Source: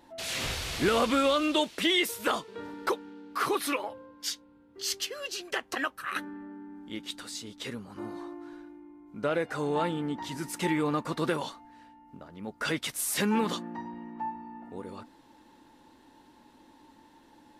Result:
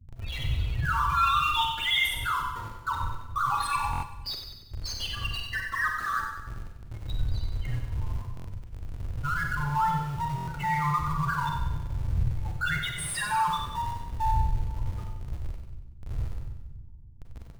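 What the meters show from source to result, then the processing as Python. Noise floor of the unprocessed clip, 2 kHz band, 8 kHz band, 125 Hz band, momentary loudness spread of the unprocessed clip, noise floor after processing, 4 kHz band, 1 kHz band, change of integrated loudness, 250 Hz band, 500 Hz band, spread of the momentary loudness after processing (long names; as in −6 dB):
−59 dBFS, +4.0 dB, −4.5 dB, +11.5 dB, 18 LU, −45 dBFS, +0.5 dB, +6.5 dB, +1.5 dB, −9.5 dB, −19.5 dB, 16 LU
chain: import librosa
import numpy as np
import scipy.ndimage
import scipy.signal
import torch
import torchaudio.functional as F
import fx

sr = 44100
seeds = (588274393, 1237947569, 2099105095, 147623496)

p1 = fx.dmg_wind(x, sr, seeds[0], corner_hz=92.0, level_db=-47.0)
p2 = scipy.signal.sosfilt(scipy.signal.ellip(3, 1.0, 40, [130.0, 920.0], 'bandstop', fs=sr, output='sos'), p1)
p3 = fx.env_lowpass(p2, sr, base_hz=370.0, full_db=-30.0)
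p4 = fx.low_shelf(p3, sr, hz=400.0, db=6.5)
p5 = fx.leveller(p4, sr, passes=3)
p6 = fx.spec_topn(p5, sr, count=8)
p7 = fx.schmitt(p6, sr, flips_db=-38.0)
p8 = p6 + (p7 * librosa.db_to_amplitude(-10.0))
p9 = fx.echo_split(p8, sr, split_hz=320.0, low_ms=284, high_ms=94, feedback_pct=52, wet_db=-7.5)
p10 = fx.rev_schroeder(p9, sr, rt60_s=0.53, comb_ms=33, drr_db=4.0)
p11 = fx.buffer_glitch(p10, sr, at_s=(3.91, 8.35, 10.36), block=1024, repeats=4)
y = p11 * librosa.db_to_amplitude(-4.5)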